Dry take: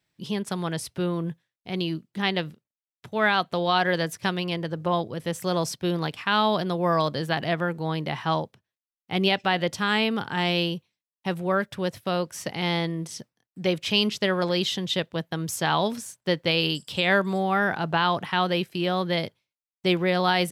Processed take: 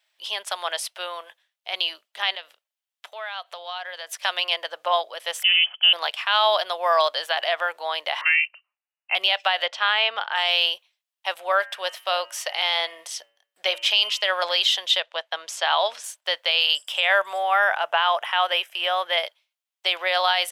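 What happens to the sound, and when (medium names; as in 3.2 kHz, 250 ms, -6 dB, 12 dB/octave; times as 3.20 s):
0.86–1.29 s: high-pass 200 Hz -> 530 Hz
2.35–4.13 s: compression, threshold -35 dBFS
5.43–5.93 s: frequency inversion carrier 3.2 kHz
8.21–9.15 s: frequency inversion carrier 2.9 kHz
9.66–10.36 s: low-pass 3.5 kHz
11.59–14.25 s: de-hum 114.5 Hz, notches 27
15.00–16.04 s: distance through air 69 m
16.75–19.26 s: peaking EQ 4.3 kHz -15 dB 0.34 oct
whole clip: Chebyshev high-pass 610 Hz, order 4; peaking EQ 3.1 kHz +6.5 dB 0.55 oct; peak limiter -14.5 dBFS; trim +5.5 dB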